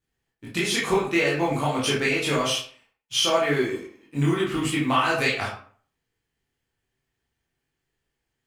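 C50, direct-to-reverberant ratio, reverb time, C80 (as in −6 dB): 4.0 dB, −6.5 dB, 0.45 s, 9.0 dB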